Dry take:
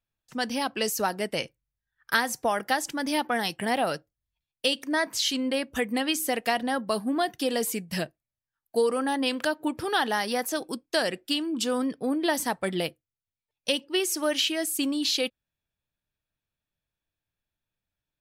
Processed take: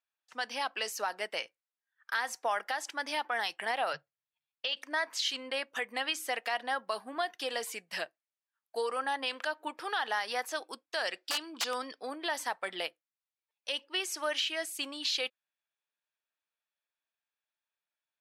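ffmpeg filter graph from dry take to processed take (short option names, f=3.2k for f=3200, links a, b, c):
-filter_complex "[0:a]asettb=1/sr,asplit=3[a][b][c];[a]atrim=end=3.934[d];[b]atrim=start=3.93:end=4.77,asetpts=PTS-STARTPTS,afade=t=in:d=0.004:c=qsin,afade=t=out:st=0.836:d=0.004:c=qsin,lowpass=f=4.8k:w=0.5412,lowpass=f=4.8k:w=1.3066,lowshelf=f=200:t=q:w=3:g=11[e];[c]atrim=start=4.766[f];[d][e]acrossfade=d=0.004:c1=hsin:c2=qsin[g];[g][f]acrossfade=d=0.004:c1=qsin:c2=hsin,asettb=1/sr,asplit=3[h][i][j];[h]atrim=end=11.074[k];[i]atrim=start=11.07:end=12.13,asetpts=PTS-STARTPTS,afade=t=in:d=0.004:c=qsin,afade=t=out:st=1.056:d=0.004:c=qsin,equalizer=f=4.8k:t=o:w=0.85:g=11,aeval=exprs='(mod(5.96*val(0)+1,2)-1)/5.96':c=same[l];[j]atrim=start=12.126[m];[k][l]acrossfade=d=0.004:c1=hsin:c2=qsin[n];[n][m]acrossfade=d=0.004:c1=qsin:c2=hsin,highpass=840,aemphasis=mode=reproduction:type=50fm,alimiter=limit=-21dB:level=0:latency=1:release=90"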